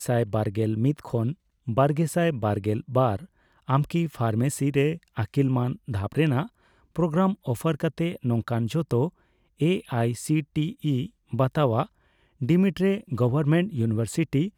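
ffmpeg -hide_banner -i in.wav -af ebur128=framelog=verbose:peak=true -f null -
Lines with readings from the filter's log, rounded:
Integrated loudness:
  I:         -25.7 LUFS
  Threshold: -36.0 LUFS
Loudness range:
  LRA:         2.0 LU
  Threshold: -46.1 LUFS
  LRA low:   -27.0 LUFS
  LRA high:  -25.1 LUFS
True peak:
  Peak:       -8.8 dBFS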